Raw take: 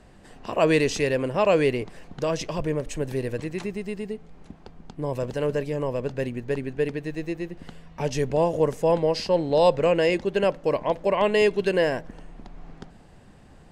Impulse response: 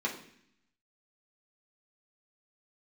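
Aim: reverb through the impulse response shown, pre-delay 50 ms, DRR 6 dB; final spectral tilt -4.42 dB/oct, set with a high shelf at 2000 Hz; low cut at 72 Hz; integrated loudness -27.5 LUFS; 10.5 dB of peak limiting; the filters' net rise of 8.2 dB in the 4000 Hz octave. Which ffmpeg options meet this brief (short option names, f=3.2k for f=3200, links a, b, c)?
-filter_complex "[0:a]highpass=72,highshelf=f=2k:g=7.5,equalizer=f=4k:t=o:g=3.5,alimiter=limit=-15.5dB:level=0:latency=1,asplit=2[a][b];[1:a]atrim=start_sample=2205,adelay=50[c];[b][c]afir=irnorm=-1:irlink=0,volume=-12dB[d];[a][d]amix=inputs=2:normalize=0,volume=-2dB"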